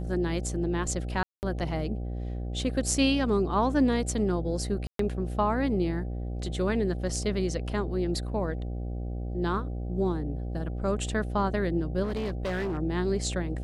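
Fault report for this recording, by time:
buzz 60 Hz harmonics 13 -33 dBFS
1.23–1.43 gap 0.199 s
4.87–4.99 gap 0.123 s
12.03–12.79 clipped -27 dBFS

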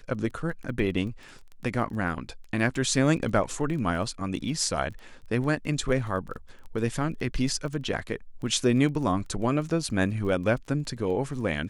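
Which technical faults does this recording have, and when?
crackle 13/s -35 dBFS

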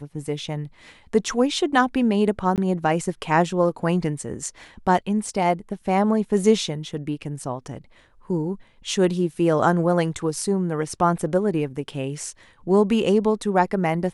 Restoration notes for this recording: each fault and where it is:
2.56–2.58 gap 18 ms

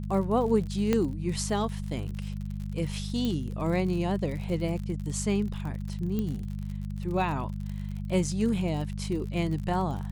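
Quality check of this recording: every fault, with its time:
crackle 58/s -35 dBFS
hum 50 Hz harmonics 4 -34 dBFS
0.93 pop -13 dBFS
3.25 pop -18 dBFS
6.19 pop -19 dBFS

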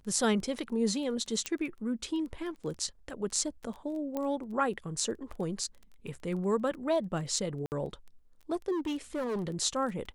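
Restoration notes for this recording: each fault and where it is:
crackle 14/s -38 dBFS
1.46 pop -16 dBFS
4.17 pop -21 dBFS
7.66–7.72 gap 59 ms
8.71–9.54 clipped -29.5 dBFS

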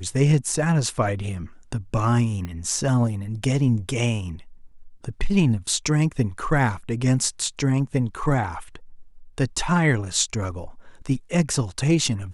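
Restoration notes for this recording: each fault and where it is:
2.45 pop -19 dBFS

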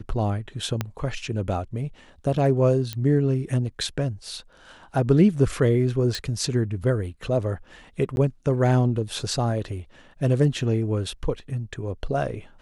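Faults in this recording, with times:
0.81 pop -11 dBFS
2.93 pop -14 dBFS
6.15 pop
8.16–8.17 gap 11 ms

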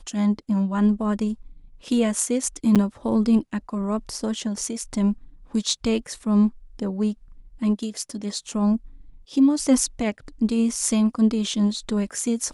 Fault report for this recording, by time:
2.75–2.76 gap 7.3 ms

